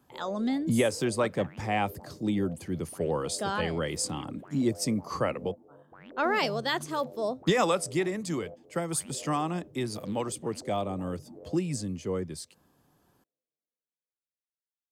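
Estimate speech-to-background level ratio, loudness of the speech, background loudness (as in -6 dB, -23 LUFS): 18.5 dB, -30.5 LUFS, -49.0 LUFS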